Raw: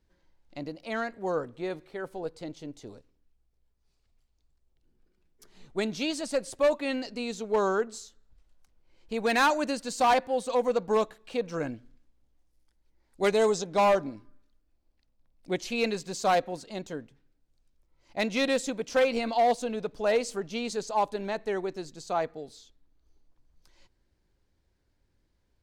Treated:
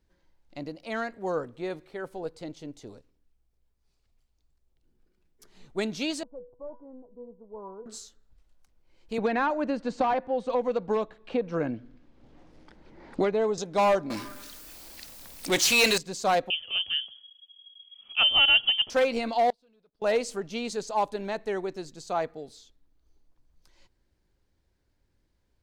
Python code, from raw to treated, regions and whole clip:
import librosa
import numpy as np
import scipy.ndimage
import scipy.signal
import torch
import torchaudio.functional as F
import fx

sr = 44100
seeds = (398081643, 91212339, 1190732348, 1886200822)

y = fx.chain(x, sr, fx.steep_lowpass(hz=1100.0, slope=48),
    fx.low_shelf(hz=210.0, db=8.0),
    fx.comb_fb(f0_hz=490.0, decay_s=0.39, harmonics='all', damping=0.0, mix_pct=90), at=(6.23, 7.86))
y = fx.chain(y, sr, fx.spacing_loss(db_at_10k=30),
    fx.band_squash(depth_pct=100), at=(9.18, 13.58))
y = fx.chain(y, sr, fx.tilt_eq(slope=4.0),
    fx.power_curve(exponent=0.5), at=(14.1, 15.98))
y = fx.chain(y, sr, fx.low_shelf(hz=500.0, db=11.5),
    fx.freq_invert(carrier_hz=3300), at=(16.5, 18.9))
y = fx.chain(y, sr, fx.high_shelf_res(hz=5600.0, db=-6.5, q=3.0),
    fx.leveller(passes=2),
    fx.gate_flip(shuts_db=-32.0, range_db=-38), at=(19.5, 20.02))